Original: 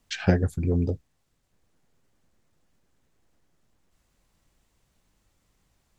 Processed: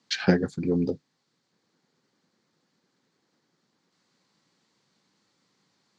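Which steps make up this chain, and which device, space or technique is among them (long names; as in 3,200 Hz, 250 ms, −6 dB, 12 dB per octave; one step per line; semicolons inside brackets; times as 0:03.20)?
television speaker (loudspeaker in its box 160–6,600 Hz, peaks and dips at 650 Hz −7 dB, 2,700 Hz −4 dB, 4,400 Hz +7 dB)
level +3 dB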